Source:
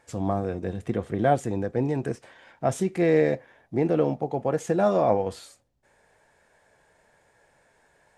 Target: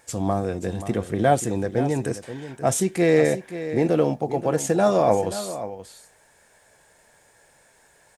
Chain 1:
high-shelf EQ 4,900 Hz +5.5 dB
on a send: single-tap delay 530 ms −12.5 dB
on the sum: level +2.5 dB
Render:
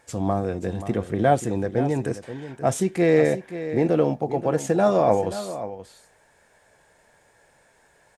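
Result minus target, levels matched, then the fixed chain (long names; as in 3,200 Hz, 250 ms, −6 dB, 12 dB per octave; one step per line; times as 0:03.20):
8,000 Hz band −6.0 dB
high-shelf EQ 4,900 Hz +14.5 dB
on a send: single-tap delay 530 ms −12.5 dB
on the sum: level +2.5 dB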